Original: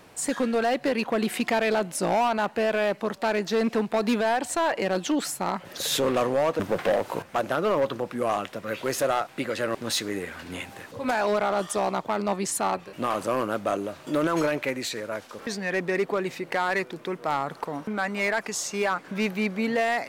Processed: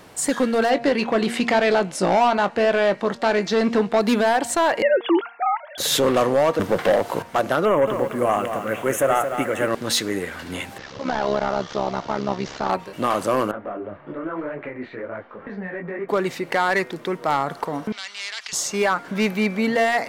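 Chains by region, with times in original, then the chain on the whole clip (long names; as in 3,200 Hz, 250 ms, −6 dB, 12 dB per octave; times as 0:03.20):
0:00.70–0:04.01: low-pass filter 7,100 Hz + double-tracking delay 21 ms −12.5 dB
0:04.82–0:05.78: three sine waves on the formant tracks + dynamic equaliser 1,100 Hz, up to +4 dB, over −39 dBFS, Q 1
0:07.65–0:09.68: Butterworth band-reject 4,500 Hz, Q 1.2 + feedback echo at a low word length 222 ms, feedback 35%, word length 8 bits, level −7.5 dB
0:10.78–0:12.70: linear delta modulator 32 kbit/s, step −35.5 dBFS + amplitude modulation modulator 69 Hz, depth 65%
0:13.51–0:16.09: low-pass filter 2,100 Hz 24 dB per octave + downward compressor, threshold −28 dBFS + micro pitch shift up and down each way 42 cents
0:17.92–0:18.53: flat-topped band-pass 3,600 Hz, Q 1.4 + every bin compressed towards the loudest bin 2 to 1
whole clip: notch filter 2,500 Hz, Q 17; hum removal 233.8 Hz, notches 11; level +5.5 dB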